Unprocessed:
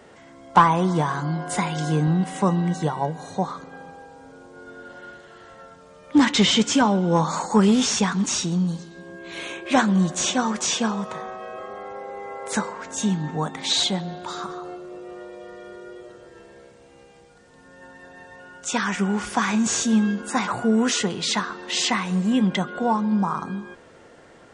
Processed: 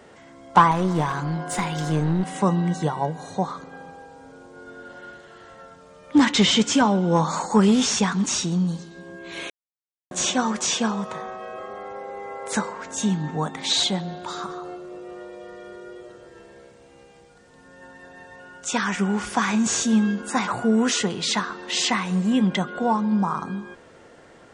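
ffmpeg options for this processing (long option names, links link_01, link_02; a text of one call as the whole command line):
ffmpeg -i in.wav -filter_complex "[0:a]asettb=1/sr,asplit=3[link_01][link_02][link_03];[link_01]atrim=end=0.714[link_04];[link_02]atrim=start=0.71:end=2.36,asetpts=PTS-STARTPTS,afade=type=in:duration=0.004:curve=qsin,afade=type=out:start_time=1.646:duration=0.004:curve=qsin,aeval=exprs='clip(val(0),-1,0.0631)':channel_layout=same[link_05];[link_03]atrim=start=2.356[link_06];[link_04][link_05]acrossfade=duration=0.004:curve1=hsin:curve2=qsin[link_07];[link_07][link_06]acrossfade=duration=0.004:curve1=qsin:curve2=hsin,asplit=3[link_08][link_09][link_10];[link_08]atrim=end=9.5,asetpts=PTS-STARTPTS,afade=type=out:start_time=9.496:duration=0.004:curve=hsin[link_11];[link_09]atrim=start=9.5:end=10.11,asetpts=PTS-STARTPTS,volume=0[link_12];[link_10]atrim=start=10.11,asetpts=PTS-STARTPTS,afade=type=in:duration=0.004:curve=hsin[link_13];[link_11][link_12][link_13]concat=n=3:v=0:a=1" out.wav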